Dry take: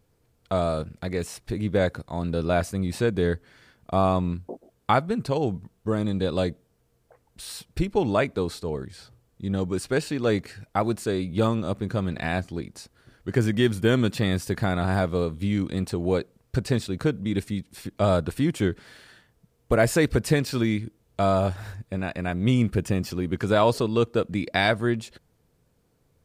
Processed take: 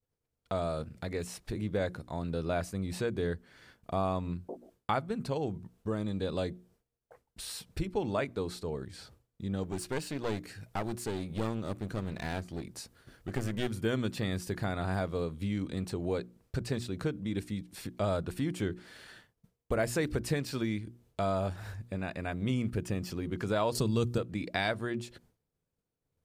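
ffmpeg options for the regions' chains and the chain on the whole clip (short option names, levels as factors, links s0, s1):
-filter_complex "[0:a]asettb=1/sr,asplit=3[s0][s1][s2];[s0]atrim=end=9.634[s3];[s1]atrim=start=9.63:end=13.68,asetpts=PTS-STARTPTS,afade=t=in:d=0.004:c=qsin,afade=t=out:st=4.046:d=0.004:c=qsin,highshelf=f=8500:g=5.5,aeval=exprs='clip(val(0),-1,0.0316)':c=same[s4];[s2]atrim=start=13.676[s5];[s3][s4]acrossfade=d=0.004:c1=hsin:c2=qsin[s6];[s6][s5]acrossfade=d=0.004:c1=qsin:c2=hsin,asettb=1/sr,asplit=3[s7][s8][s9];[s7]atrim=end=23.754[s10];[s8]atrim=start=23.75:end=24.18,asetpts=PTS-STARTPTS,afade=t=in:d=0.004:c=qsin,afade=t=out:st=0.426:d=0.004:c=qsin,bass=f=250:g=12,treble=f=4000:g=12,acompressor=mode=upward:threshold=0.0631:ratio=2.5:attack=3.2:release=140:knee=2.83:detection=peak[s11];[s9]atrim=start=24.176[s12];[s10][s11]acrossfade=d=0.004:c1=hsin:c2=qsin[s13];[s13][s12]acrossfade=d=0.004:c1=qsin:c2=hsin,bandreject=f=60:t=h:w=6,bandreject=f=120:t=h:w=6,bandreject=f=180:t=h:w=6,bandreject=f=240:t=h:w=6,bandreject=f=300:t=h:w=6,bandreject=f=360:t=h:w=6,agate=range=0.0224:threshold=0.002:ratio=3:detection=peak,acompressor=threshold=0.00631:ratio=1.5"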